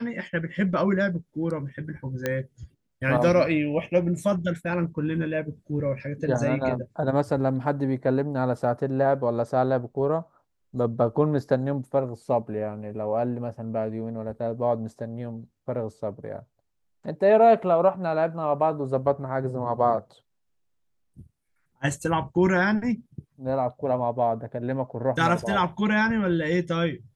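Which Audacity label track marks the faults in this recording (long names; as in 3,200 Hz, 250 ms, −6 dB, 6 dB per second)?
2.260000	2.260000	click −12 dBFS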